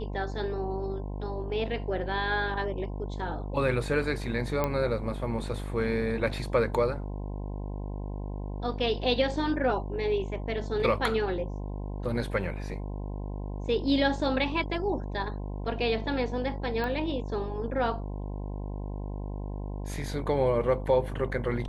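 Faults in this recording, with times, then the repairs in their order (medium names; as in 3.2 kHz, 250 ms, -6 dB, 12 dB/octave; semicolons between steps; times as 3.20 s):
buzz 50 Hz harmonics 21 -35 dBFS
4.64 s: pop -14 dBFS
16.84 s: pop -21 dBFS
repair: de-click; de-hum 50 Hz, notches 21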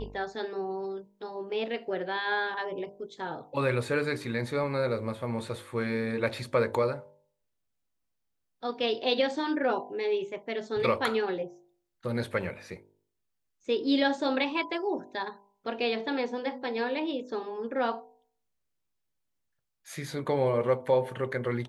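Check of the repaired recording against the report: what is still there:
16.84 s: pop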